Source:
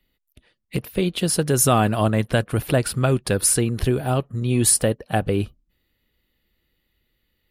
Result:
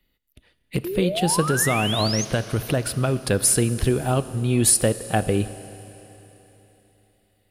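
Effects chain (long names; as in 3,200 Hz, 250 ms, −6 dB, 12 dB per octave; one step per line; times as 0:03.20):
0:01.45–0:03.20: downward compressor, threshold −18 dBFS, peak gain reduction 6.5 dB
0:00.84–0:02.25: sound drawn into the spectrogram rise 330–6,700 Hz −28 dBFS
four-comb reverb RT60 3.6 s, combs from 26 ms, DRR 13.5 dB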